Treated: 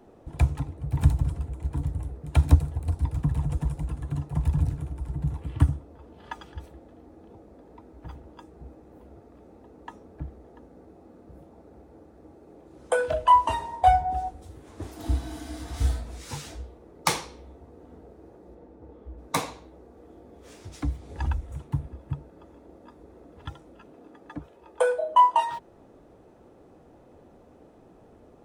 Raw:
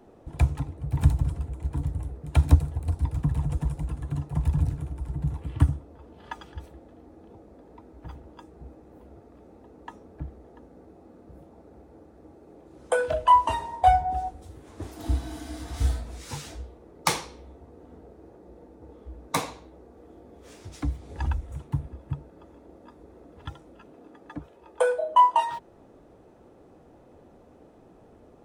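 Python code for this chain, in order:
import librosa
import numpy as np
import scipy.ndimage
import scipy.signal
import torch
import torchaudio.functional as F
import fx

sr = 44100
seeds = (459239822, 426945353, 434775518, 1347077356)

y = fx.high_shelf(x, sr, hz=fx.line((18.54, 6300.0), (19.17, 3300.0)), db=-12.0, at=(18.54, 19.17), fade=0.02)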